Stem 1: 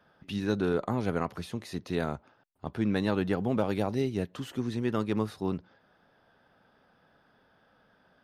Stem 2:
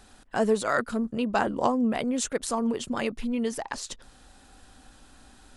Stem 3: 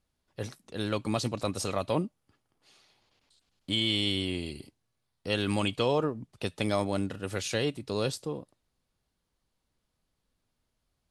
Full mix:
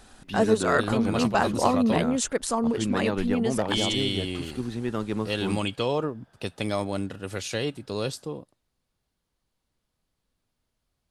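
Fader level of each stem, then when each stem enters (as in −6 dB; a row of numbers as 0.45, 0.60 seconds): 0.0, +2.0, +0.5 decibels; 0.00, 0.00, 0.00 seconds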